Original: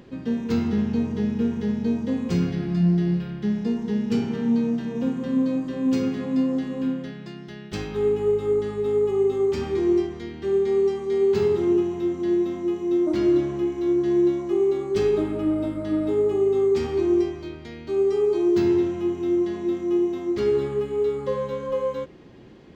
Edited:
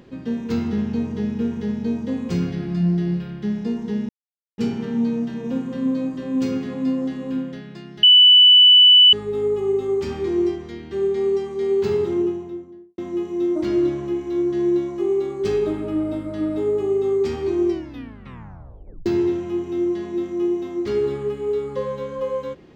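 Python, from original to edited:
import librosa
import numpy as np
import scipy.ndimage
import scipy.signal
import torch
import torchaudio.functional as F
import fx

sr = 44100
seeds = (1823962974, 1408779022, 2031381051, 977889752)

y = fx.studio_fade_out(x, sr, start_s=11.54, length_s=0.95)
y = fx.edit(y, sr, fx.insert_silence(at_s=4.09, length_s=0.49),
    fx.bleep(start_s=7.54, length_s=1.1, hz=2980.0, db=-7.0),
    fx.tape_stop(start_s=17.2, length_s=1.37), tone=tone)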